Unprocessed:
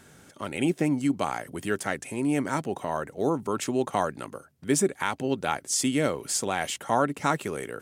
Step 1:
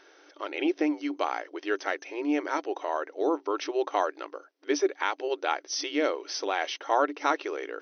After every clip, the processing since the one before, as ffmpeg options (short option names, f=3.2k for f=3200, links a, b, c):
-af "afftfilt=real='re*between(b*sr/4096,290,6200)':imag='im*between(b*sr/4096,290,6200)':win_size=4096:overlap=0.75"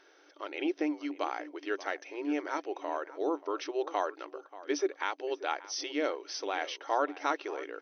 -filter_complex "[0:a]asplit=2[a][b];[b]adelay=583.1,volume=-16dB,highshelf=f=4k:g=-13.1[c];[a][c]amix=inputs=2:normalize=0,volume=-5dB"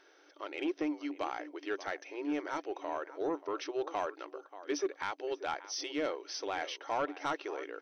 -af "asoftclip=type=tanh:threshold=-22.5dB,volume=-1.5dB"